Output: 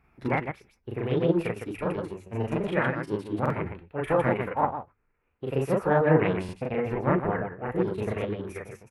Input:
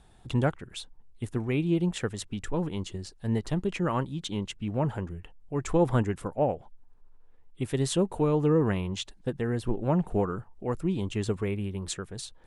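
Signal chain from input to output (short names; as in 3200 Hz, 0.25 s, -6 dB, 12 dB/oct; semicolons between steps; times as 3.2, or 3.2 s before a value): HPF 41 Hz 12 dB/oct; notches 50/100 Hz; tempo 1.4×; in parallel at +3 dB: limiter -23.5 dBFS, peak gain reduction 11 dB; on the sum: resonant high shelf 2300 Hz -11.5 dB, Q 3; on a send: loudspeakers at several distances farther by 13 m 0 dB, 54 m -4 dB; on the sum: flange 0.2 Hz, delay 2.4 ms, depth 9.2 ms, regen -83%; formant shift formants +6 st; stuck buffer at 3.41/6.44, samples 2048, times 1; upward expander 1.5:1, over -37 dBFS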